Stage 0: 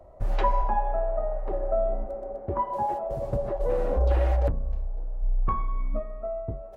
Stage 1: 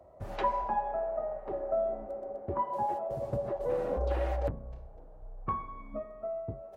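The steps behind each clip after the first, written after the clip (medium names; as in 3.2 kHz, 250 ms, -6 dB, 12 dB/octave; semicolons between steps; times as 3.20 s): high-pass 84 Hz 12 dB/octave; trim -4 dB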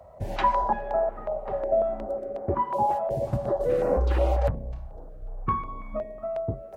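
step-sequenced notch 5.5 Hz 330–3400 Hz; trim +9 dB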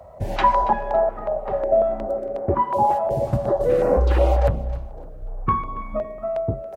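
feedback delay 279 ms, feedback 28%, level -18 dB; trim +5.5 dB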